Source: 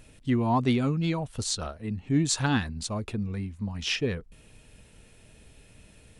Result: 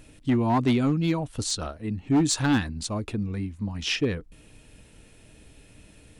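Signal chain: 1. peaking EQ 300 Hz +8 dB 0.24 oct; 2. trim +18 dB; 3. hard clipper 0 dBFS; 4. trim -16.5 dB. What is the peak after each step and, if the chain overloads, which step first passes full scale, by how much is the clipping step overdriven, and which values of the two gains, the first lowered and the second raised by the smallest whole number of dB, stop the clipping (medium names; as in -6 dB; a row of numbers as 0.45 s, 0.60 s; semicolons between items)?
-9.5 dBFS, +8.5 dBFS, 0.0 dBFS, -16.5 dBFS; step 2, 8.5 dB; step 2 +9 dB, step 4 -7.5 dB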